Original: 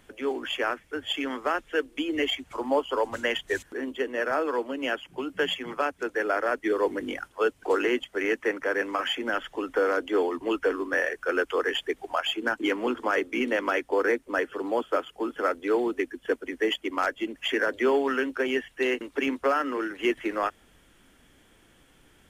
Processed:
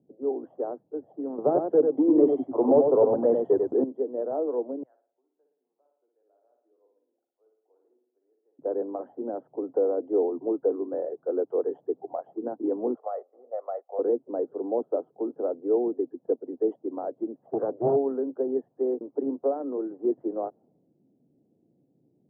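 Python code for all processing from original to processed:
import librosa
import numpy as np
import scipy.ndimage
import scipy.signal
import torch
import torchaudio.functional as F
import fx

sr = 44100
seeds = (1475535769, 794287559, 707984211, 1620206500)

y = fx.chain(x, sr, fx.leveller(passes=3),
    fx.echo_single(ms=96, db=-5.0), at=(1.38, 3.84))
y = fx.chain(y, sr, fx.ladder_bandpass(hz=2300.0, resonance_pct=40),
    fx.room_flutter(wall_m=9.8, rt60_s=0.76), at=(4.83, 8.59))
y = fx.chain(y, sr, fx.highpass(hz=670.0, slope=24),
    fx.comb(ms=1.6, depth=0.72), at=(12.95, 13.99))
y = fx.chain(y, sr, fx.high_shelf_res(hz=1800.0, db=-9.5, q=3.0),
    fx.doppler_dist(depth_ms=0.77), at=(17.47, 17.96))
y = scipy.signal.sosfilt(scipy.signal.ellip(3, 1.0, 50, [130.0, 740.0], 'bandpass', fs=sr, output='sos'), y)
y = fx.dynamic_eq(y, sr, hz=450.0, q=2.1, threshold_db=-39.0, ratio=4.0, max_db=4)
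y = fx.env_lowpass(y, sr, base_hz=360.0, full_db=-23.5)
y = y * librosa.db_to_amplitude(-1.5)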